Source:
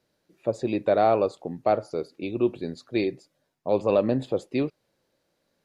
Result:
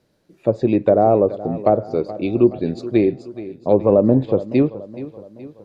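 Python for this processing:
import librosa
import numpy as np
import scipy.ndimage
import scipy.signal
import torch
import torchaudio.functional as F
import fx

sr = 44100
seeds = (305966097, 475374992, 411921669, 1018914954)

y = fx.env_lowpass_down(x, sr, base_hz=790.0, full_db=-17.5)
y = fx.low_shelf(y, sr, hz=490.0, db=7.5)
y = fx.echo_feedback(y, sr, ms=424, feedback_pct=51, wet_db=-16)
y = y * 10.0 ** (4.5 / 20.0)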